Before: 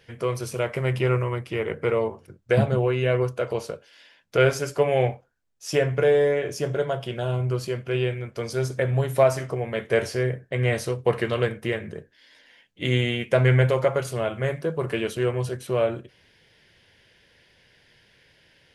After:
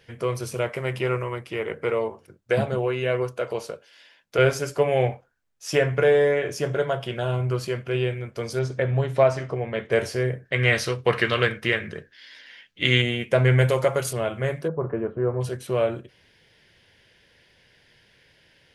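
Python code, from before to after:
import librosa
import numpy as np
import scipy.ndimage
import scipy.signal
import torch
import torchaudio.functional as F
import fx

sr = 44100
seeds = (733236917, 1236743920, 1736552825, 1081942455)

y = fx.low_shelf(x, sr, hz=200.0, db=-8.5, at=(0.69, 4.39))
y = fx.peak_eq(y, sr, hz=1600.0, db=4.0, octaves=2.0, at=(5.11, 7.88))
y = fx.lowpass(y, sr, hz=4900.0, slope=12, at=(8.59, 9.92))
y = fx.band_shelf(y, sr, hz=2600.0, db=8.5, octaves=2.6, at=(10.45, 13.02))
y = fx.high_shelf(y, sr, hz=4900.0, db=10.5, at=(13.58, 14.13))
y = fx.lowpass(y, sr, hz=1300.0, slope=24, at=(14.67, 15.4), fade=0.02)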